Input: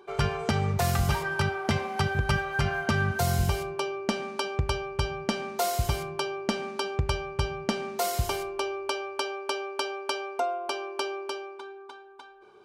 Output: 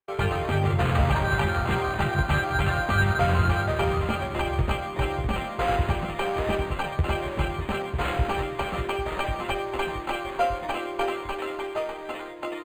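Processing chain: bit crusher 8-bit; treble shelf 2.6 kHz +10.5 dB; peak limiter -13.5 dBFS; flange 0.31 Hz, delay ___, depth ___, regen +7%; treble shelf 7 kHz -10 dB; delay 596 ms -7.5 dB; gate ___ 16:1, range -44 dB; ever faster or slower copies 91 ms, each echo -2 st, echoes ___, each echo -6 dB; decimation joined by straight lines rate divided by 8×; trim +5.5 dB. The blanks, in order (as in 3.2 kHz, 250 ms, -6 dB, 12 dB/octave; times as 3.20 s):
9.9 ms, 6.6 ms, -48 dBFS, 2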